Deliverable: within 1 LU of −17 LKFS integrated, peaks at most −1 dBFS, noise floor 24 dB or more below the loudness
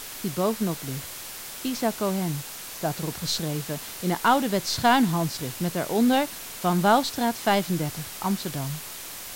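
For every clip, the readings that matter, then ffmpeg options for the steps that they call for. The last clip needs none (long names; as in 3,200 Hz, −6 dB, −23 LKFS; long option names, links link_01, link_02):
background noise floor −38 dBFS; target noise floor −50 dBFS; integrated loudness −26.0 LKFS; sample peak −7.5 dBFS; target loudness −17.0 LKFS
→ -af "afftdn=noise_reduction=12:noise_floor=-38"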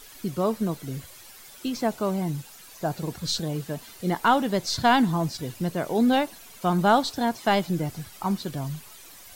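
background noise floor −47 dBFS; target noise floor −50 dBFS
→ -af "afftdn=noise_reduction=6:noise_floor=-47"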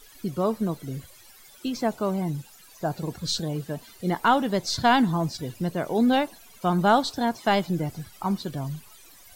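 background noise floor −51 dBFS; integrated loudness −26.0 LKFS; sample peak −7.5 dBFS; target loudness −17.0 LKFS
→ -af "volume=9dB,alimiter=limit=-1dB:level=0:latency=1"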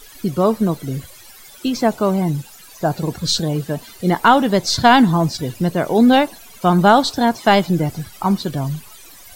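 integrated loudness −17.5 LKFS; sample peak −1.0 dBFS; background noise floor −42 dBFS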